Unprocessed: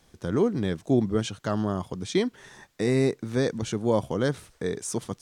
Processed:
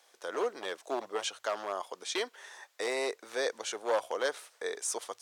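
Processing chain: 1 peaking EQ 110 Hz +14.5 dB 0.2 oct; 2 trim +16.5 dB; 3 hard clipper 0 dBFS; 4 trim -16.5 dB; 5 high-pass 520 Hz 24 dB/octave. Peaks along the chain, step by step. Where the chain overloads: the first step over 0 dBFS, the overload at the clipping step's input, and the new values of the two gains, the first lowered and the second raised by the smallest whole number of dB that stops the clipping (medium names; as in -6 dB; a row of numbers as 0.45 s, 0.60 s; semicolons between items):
-9.0 dBFS, +7.5 dBFS, 0.0 dBFS, -16.5 dBFS, -16.5 dBFS; step 2, 7.5 dB; step 2 +8.5 dB, step 4 -8.5 dB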